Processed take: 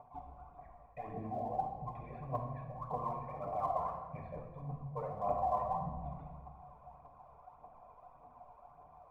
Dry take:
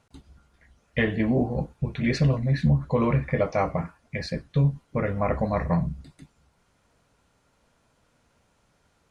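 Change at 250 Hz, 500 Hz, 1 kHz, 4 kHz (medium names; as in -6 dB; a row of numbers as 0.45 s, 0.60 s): -22.5 dB, -13.0 dB, -2.5 dB, under -30 dB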